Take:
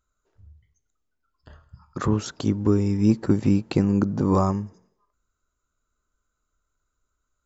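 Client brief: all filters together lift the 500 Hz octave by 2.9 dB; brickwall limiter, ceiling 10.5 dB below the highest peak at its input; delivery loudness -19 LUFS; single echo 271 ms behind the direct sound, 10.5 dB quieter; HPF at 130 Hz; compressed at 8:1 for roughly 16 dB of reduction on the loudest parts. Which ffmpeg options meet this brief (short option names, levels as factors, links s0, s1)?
-af "highpass=130,equalizer=f=500:t=o:g=4,acompressor=threshold=0.0282:ratio=8,alimiter=level_in=1.19:limit=0.0631:level=0:latency=1,volume=0.841,aecho=1:1:271:0.299,volume=8.41"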